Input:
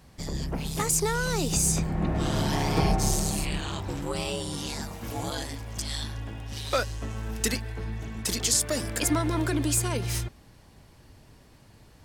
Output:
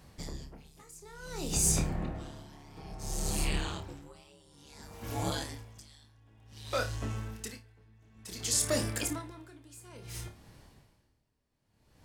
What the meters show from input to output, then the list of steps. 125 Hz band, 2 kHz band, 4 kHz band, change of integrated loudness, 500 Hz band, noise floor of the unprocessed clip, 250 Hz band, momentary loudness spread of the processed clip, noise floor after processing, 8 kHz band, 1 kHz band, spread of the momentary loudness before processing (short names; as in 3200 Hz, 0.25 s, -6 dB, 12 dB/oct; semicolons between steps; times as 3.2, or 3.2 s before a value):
-9.0 dB, -8.5 dB, -8.0 dB, -5.5 dB, -8.5 dB, -55 dBFS, -10.5 dB, 23 LU, -73 dBFS, -6.0 dB, -10.0 dB, 11 LU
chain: flutter echo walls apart 4.8 m, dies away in 0.23 s; dB-linear tremolo 0.57 Hz, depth 26 dB; gain -2 dB